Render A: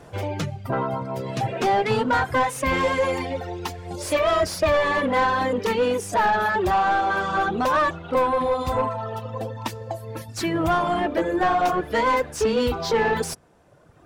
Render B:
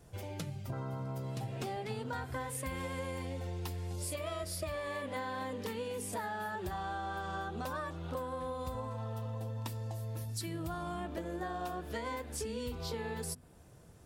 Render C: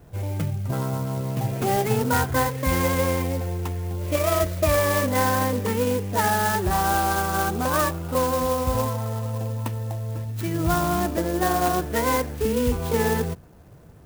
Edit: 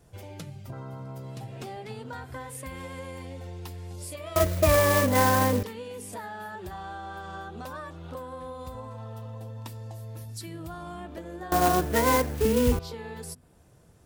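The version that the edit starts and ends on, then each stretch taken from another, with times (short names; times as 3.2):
B
4.36–5.63 from C
11.52–12.79 from C
not used: A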